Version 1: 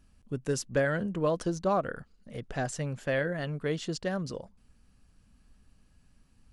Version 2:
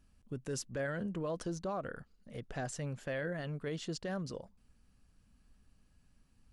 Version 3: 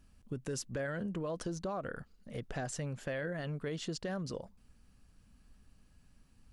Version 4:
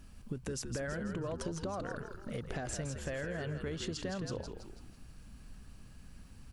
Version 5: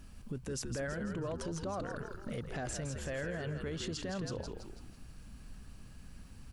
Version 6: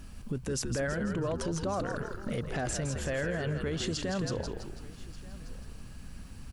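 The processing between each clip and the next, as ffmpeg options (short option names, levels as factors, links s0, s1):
-af "alimiter=level_in=1.06:limit=0.0631:level=0:latency=1:release=21,volume=0.944,volume=0.562"
-af "acompressor=threshold=0.0112:ratio=3,volume=1.58"
-filter_complex "[0:a]acompressor=threshold=0.00501:ratio=5,asplit=7[s0][s1][s2][s3][s4][s5][s6];[s1]adelay=164,afreqshift=-70,volume=0.473[s7];[s2]adelay=328,afreqshift=-140,volume=0.221[s8];[s3]adelay=492,afreqshift=-210,volume=0.105[s9];[s4]adelay=656,afreqshift=-280,volume=0.049[s10];[s5]adelay=820,afreqshift=-350,volume=0.0232[s11];[s6]adelay=984,afreqshift=-420,volume=0.0108[s12];[s0][s7][s8][s9][s10][s11][s12]amix=inputs=7:normalize=0,volume=2.82"
-af "alimiter=level_in=2.37:limit=0.0631:level=0:latency=1:release=20,volume=0.422,volume=1.19"
-af "aecho=1:1:1184:0.0891,volume=2"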